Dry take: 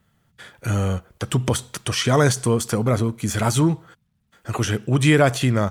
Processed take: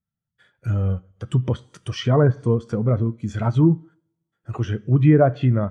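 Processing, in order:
coupled-rooms reverb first 0.76 s, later 3.2 s, from −26 dB, DRR 13 dB
treble cut that deepens with the level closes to 1,500 Hz, closed at −12 dBFS
every bin expanded away from the loudest bin 1.5 to 1

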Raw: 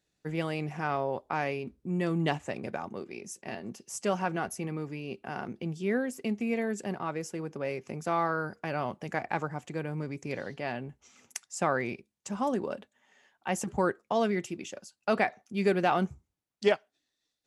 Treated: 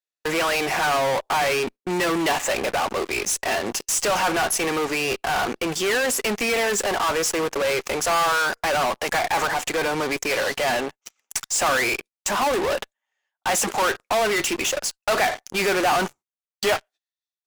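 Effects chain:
high-pass filter 650 Hz 12 dB per octave
noise gate −57 dBFS, range −15 dB
in parallel at −8.5 dB: fuzz pedal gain 54 dB, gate −59 dBFS

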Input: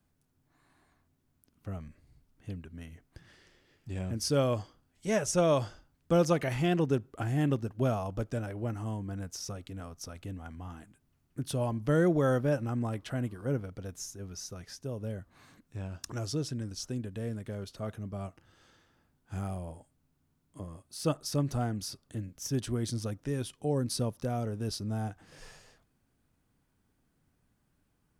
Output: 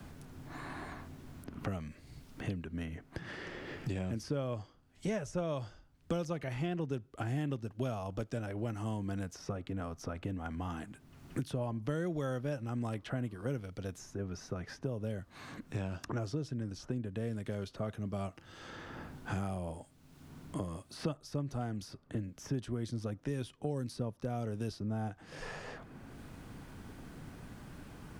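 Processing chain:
low-pass filter 3,900 Hz 6 dB per octave
multiband upward and downward compressor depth 100%
level −4.5 dB

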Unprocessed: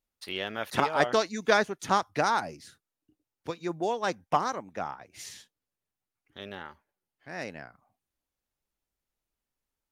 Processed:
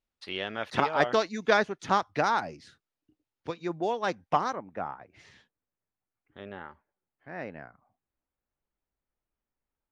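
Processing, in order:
low-pass filter 4,800 Hz 12 dB per octave, from 0:04.53 1,900 Hz

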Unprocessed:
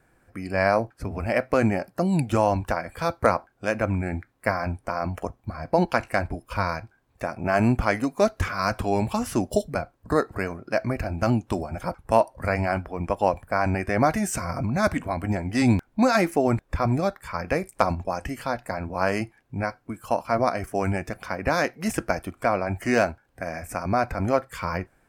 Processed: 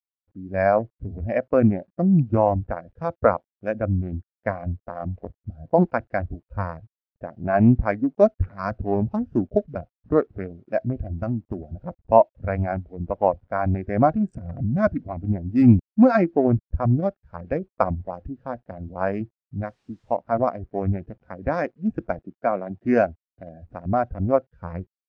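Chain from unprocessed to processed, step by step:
adaptive Wiener filter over 41 samples
0:11.06–0:11.75: downward compressor 6 to 1, threshold −23 dBFS, peak gain reduction 6 dB
0:19.62–0:20.15: background noise white −48 dBFS
0:22.19–0:22.85: high-pass filter 130 Hz 24 dB per octave
bit reduction 9 bits
high-frequency loss of the air 90 metres
every bin expanded away from the loudest bin 1.5 to 1
level +3 dB

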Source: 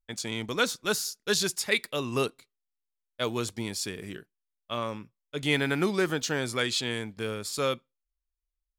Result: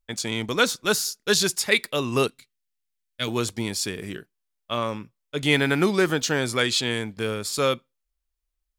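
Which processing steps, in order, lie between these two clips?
0:02.27–0:03.28: flat-topped bell 630 Hz −10 dB 2.3 octaves
level +5.5 dB

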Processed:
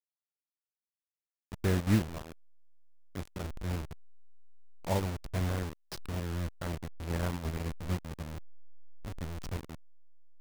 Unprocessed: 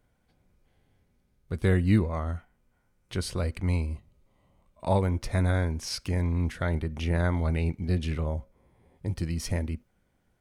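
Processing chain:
hold until the input has moved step −24 dBFS
expander for the loud parts 1.5 to 1, over −36 dBFS
level −3 dB

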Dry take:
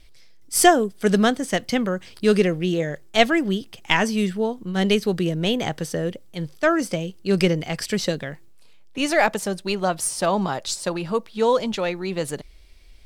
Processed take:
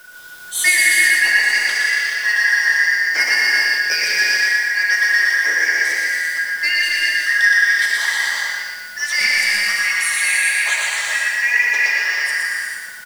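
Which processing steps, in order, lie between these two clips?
band-splitting scrambler in four parts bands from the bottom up 3142
Bessel high-pass filter 600 Hz, order 8
in parallel at −0.5 dB: downward compressor 4 to 1, threshold −35 dBFS, peak gain reduction 21.5 dB
on the sum: bit-depth reduction 8 bits, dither triangular
soft clipping −8.5 dBFS, distortion −18 dB
on a send: repeating echo 119 ms, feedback 52%, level −3 dB
on the sum: reverb whose tail is shaped and stops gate 470 ms flat, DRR −4 dB
level −2.5 dB

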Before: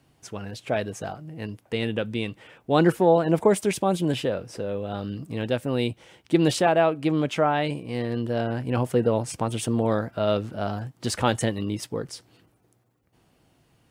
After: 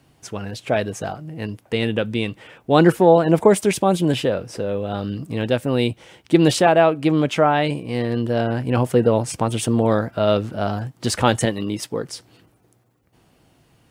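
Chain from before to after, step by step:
0:11.45–0:12.10: high-pass filter 170 Hz 6 dB per octave
level +5.5 dB

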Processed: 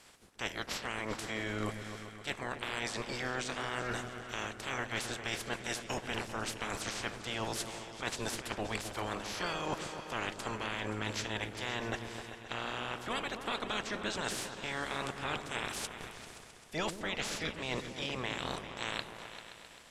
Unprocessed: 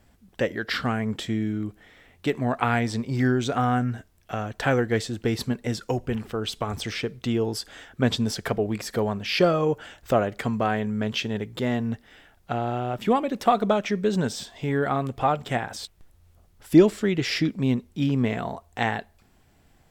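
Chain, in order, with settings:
ceiling on every frequency bin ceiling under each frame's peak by 29 dB
reversed playback
downward compressor 6 to 1, threshold −35 dBFS, peak gain reduction 23 dB
reversed playback
low-pass filter 11,000 Hz 24 dB per octave
on a send: echo whose low-pass opens from repeat to repeat 131 ms, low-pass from 400 Hz, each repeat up 2 octaves, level −6 dB

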